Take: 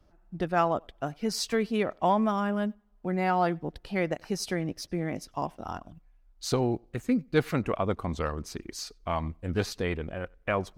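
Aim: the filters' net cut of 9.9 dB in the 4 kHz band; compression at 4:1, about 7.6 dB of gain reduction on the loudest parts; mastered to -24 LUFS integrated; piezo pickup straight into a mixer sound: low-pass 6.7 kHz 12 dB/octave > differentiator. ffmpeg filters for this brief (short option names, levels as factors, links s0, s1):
-af "equalizer=f=4000:t=o:g=-6.5,acompressor=threshold=0.0447:ratio=4,lowpass=6700,aderivative,volume=20"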